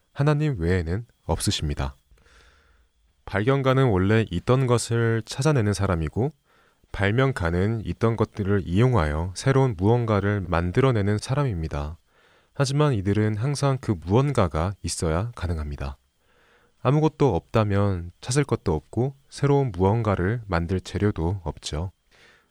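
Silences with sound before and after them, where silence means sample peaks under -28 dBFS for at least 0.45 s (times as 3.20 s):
1.89–3.28 s
6.28–6.94 s
11.90–12.59 s
15.91–16.85 s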